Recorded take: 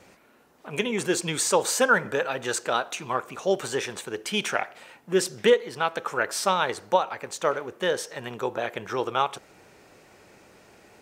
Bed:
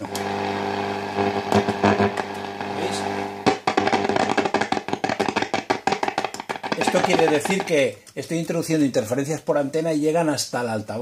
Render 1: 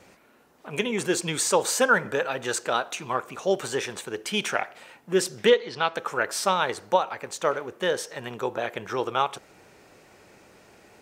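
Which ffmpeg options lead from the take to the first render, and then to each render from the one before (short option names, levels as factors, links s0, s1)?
-filter_complex "[0:a]asettb=1/sr,asplit=3[s0][s1][s2];[s0]atrim=end=5.484[s3];[s1]atrim=start=5.48:end=5.94,asetpts=PTS-STARTPTS,afade=t=in:d=0.004:c=qsin,afade=t=out:st=0.456:d=0.004:c=qsin,lowpass=f=4500:t=q:w=1.9[s4];[s2]atrim=start=5.936[s5];[s3][s4]acrossfade=d=0.004:c1=hsin:c2=qsin[s6];[s6][s5]acrossfade=d=0.004:c1=qsin:c2=hsin"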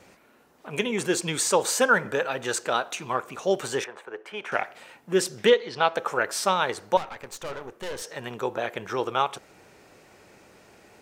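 -filter_complex "[0:a]asettb=1/sr,asplit=3[s0][s1][s2];[s0]atrim=end=3.844[s3];[s1]atrim=start=3.84:end=4.52,asetpts=PTS-STARTPTS,afade=t=in:d=0.004:c=qsin,afade=t=out:st=0.676:d=0.004:c=qsin,acrossover=split=410 2100:gain=0.1 1 0.0794[s4][s5][s6];[s4][s5][s6]amix=inputs=3:normalize=0[s7];[s2]atrim=start=4.516[s8];[s3][s7]acrossfade=d=0.004:c1=hsin:c2=qsin[s9];[s9][s8]acrossfade=d=0.004:c1=qsin:c2=hsin,asettb=1/sr,asplit=3[s10][s11][s12];[s10]atrim=end=5.784[s13];[s11]atrim=start=5.78:end=6.19,asetpts=PTS-STARTPTS,afade=t=in:d=0.004:c=qsin,afade=t=out:st=0.406:d=0.004:c=qsin,equalizer=f=650:w=1.2:g=5.5[s14];[s12]atrim=start=6.186[s15];[s13][s14]acrossfade=d=0.004:c1=hsin:c2=qsin[s16];[s16][s15]acrossfade=d=0.004:c1=qsin:c2=hsin,asettb=1/sr,asplit=3[s17][s18][s19];[s17]atrim=end=6.974[s20];[s18]atrim=start=6.97:end=8.02,asetpts=PTS-STARTPTS,afade=t=in:d=0.004:c=qsin,afade=t=out:st=1.046:d=0.004:c=qsin,aeval=exprs='(tanh(35.5*val(0)+0.7)-tanh(0.7))/35.5':c=same[s21];[s19]atrim=start=8.016[s22];[s20][s21]acrossfade=d=0.004:c1=hsin:c2=qsin[s23];[s23][s22]acrossfade=d=0.004:c1=qsin:c2=hsin"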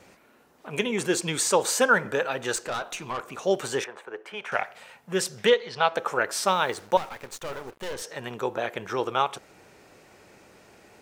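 -filter_complex "[0:a]asettb=1/sr,asplit=3[s0][s1][s2];[s0]atrim=end=2.564[s3];[s1]atrim=start=2.56:end=3.32,asetpts=PTS-STARTPTS,afade=t=in:d=0.004:c=qsin,afade=t=out:st=0.756:d=0.004:c=qsin,aeval=exprs='(tanh(17.8*val(0)+0.2)-tanh(0.2))/17.8':c=same[s4];[s2]atrim=start=3.316[s5];[s3][s4]acrossfade=d=0.004:c1=hsin:c2=qsin[s6];[s6][s5]acrossfade=d=0.004:c1=qsin:c2=hsin,asettb=1/sr,asplit=3[s7][s8][s9];[s7]atrim=end=4.344[s10];[s8]atrim=start=4.34:end=5.92,asetpts=PTS-STARTPTS,afade=t=in:d=0.004:c=qsin,afade=t=out:st=1.576:d=0.004:c=qsin,equalizer=f=310:t=o:w=0.39:g=-14.5[s11];[s9]atrim=start=5.916[s12];[s10][s11]acrossfade=d=0.004:c1=hsin:c2=qsin[s13];[s13][s12]acrossfade=d=0.004:c1=qsin:c2=hsin,asettb=1/sr,asplit=3[s14][s15][s16];[s14]atrim=end=6.474[s17];[s15]atrim=start=6.47:end=7.94,asetpts=PTS-STARTPTS,afade=t=in:d=0.004:c=qsin,afade=t=out:st=1.466:d=0.004:c=qsin,acrusher=bits=7:mix=0:aa=0.5[s18];[s16]atrim=start=7.936[s19];[s17][s18]acrossfade=d=0.004:c1=hsin:c2=qsin[s20];[s20][s19]acrossfade=d=0.004:c1=qsin:c2=hsin"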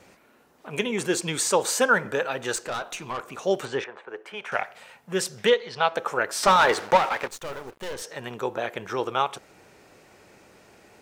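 -filter_complex "[0:a]asettb=1/sr,asplit=3[s0][s1][s2];[s0]atrim=end=3.654[s3];[s1]atrim=start=3.65:end=4.09,asetpts=PTS-STARTPTS,afade=t=in:d=0.004:c=qsin,afade=t=out:st=0.436:d=0.004:c=qsin,lowpass=3600[s4];[s2]atrim=start=4.086[s5];[s3][s4]acrossfade=d=0.004:c1=hsin:c2=qsin[s6];[s6][s5]acrossfade=d=0.004:c1=qsin:c2=hsin,asettb=1/sr,asplit=3[s7][s8][s9];[s7]atrim=end=6.434[s10];[s8]atrim=start=6.43:end=7.28,asetpts=PTS-STARTPTS,afade=t=in:d=0.004:c=qsin,afade=t=out:st=0.846:d=0.004:c=qsin,asplit=2[s11][s12];[s12]highpass=f=720:p=1,volume=12.6,asoftclip=type=tanh:threshold=0.398[s13];[s11][s13]amix=inputs=2:normalize=0,lowpass=f=2300:p=1,volume=0.501[s14];[s9]atrim=start=7.276[s15];[s10][s14]acrossfade=d=0.004:c1=hsin:c2=qsin[s16];[s16][s15]acrossfade=d=0.004:c1=qsin:c2=hsin"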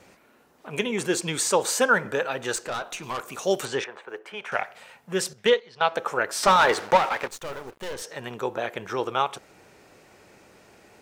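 -filter_complex "[0:a]asettb=1/sr,asplit=3[s0][s1][s2];[s0]atrim=end=3.034[s3];[s1]atrim=start=3.03:end=4.19,asetpts=PTS-STARTPTS,afade=t=in:d=0.004:c=qsin,afade=t=out:st=1.156:d=0.004:c=qsin,highshelf=f=4700:g=11.5[s4];[s2]atrim=start=4.186[s5];[s3][s4]acrossfade=d=0.004:c1=hsin:c2=qsin[s6];[s6][s5]acrossfade=d=0.004:c1=qsin:c2=hsin,asettb=1/sr,asplit=3[s7][s8][s9];[s7]atrim=end=5.334[s10];[s8]atrim=start=5.33:end=5.91,asetpts=PTS-STARTPTS,afade=t=in:d=0.004:c=qsin,afade=t=out:st=0.576:d=0.004:c=qsin,agate=range=0.282:threshold=0.0316:ratio=16:release=100:detection=peak[s11];[s9]atrim=start=5.906[s12];[s10][s11]acrossfade=d=0.004:c1=hsin:c2=qsin[s13];[s13][s12]acrossfade=d=0.004:c1=qsin:c2=hsin"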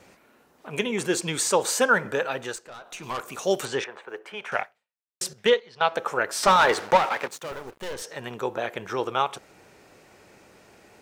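-filter_complex "[0:a]asettb=1/sr,asplit=3[s0][s1][s2];[s0]atrim=end=7.084[s3];[s1]atrim=start=7.08:end=7.52,asetpts=PTS-STARTPTS,afade=t=in:d=0.004:c=qsin,afade=t=out:st=0.436:d=0.004:c=qsin,highpass=f=120:w=0.5412,highpass=f=120:w=1.3066[s4];[s2]atrim=start=7.516[s5];[s3][s4]acrossfade=d=0.004:c1=hsin:c2=qsin[s6];[s6][s5]acrossfade=d=0.004:c1=qsin:c2=hsin,asplit=4[s7][s8][s9][s10];[s7]atrim=end=2.61,asetpts=PTS-STARTPTS,afade=t=out:st=2.36:d=0.25:silence=0.251189[s11];[s8]atrim=start=2.61:end=2.82,asetpts=PTS-STARTPTS,volume=0.251[s12];[s9]atrim=start=2.82:end=5.21,asetpts=PTS-STARTPTS,afade=t=in:d=0.25:silence=0.251189,afade=t=out:st=1.79:d=0.6:c=exp[s13];[s10]atrim=start=5.21,asetpts=PTS-STARTPTS,afade=t=in:d=0.004:c=hsin[s14];[s11][s12][s13][s14]concat=n=4:v=0:a=1"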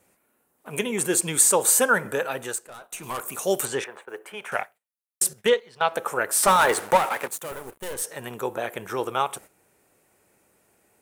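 -af "agate=range=0.251:threshold=0.00562:ratio=16:detection=peak,highshelf=f=7300:t=q:w=1.5:g=12.5"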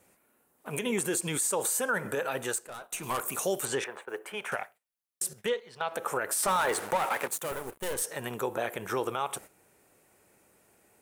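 -af "acompressor=threshold=0.0631:ratio=2,alimiter=limit=0.106:level=0:latency=1:release=65"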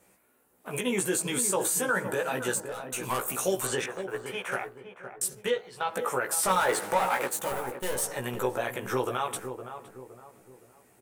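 -filter_complex "[0:a]asplit=2[s0][s1];[s1]adelay=16,volume=0.708[s2];[s0][s2]amix=inputs=2:normalize=0,asplit=2[s3][s4];[s4]adelay=514,lowpass=f=1000:p=1,volume=0.398,asplit=2[s5][s6];[s6]adelay=514,lowpass=f=1000:p=1,volume=0.43,asplit=2[s7][s8];[s8]adelay=514,lowpass=f=1000:p=1,volume=0.43,asplit=2[s9][s10];[s10]adelay=514,lowpass=f=1000:p=1,volume=0.43,asplit=2[s11][s12];[s12]adelay=514,lowpass=f=1000:p=1,volume=0.43[s13];[s5][s7][s9][s11][s13]amix=inputs=5:normalize=0[s14];[s3][s14]amix=inputs=2:normalize=0"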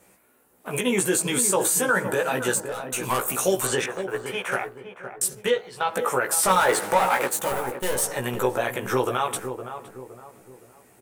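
-af "volume=1.88"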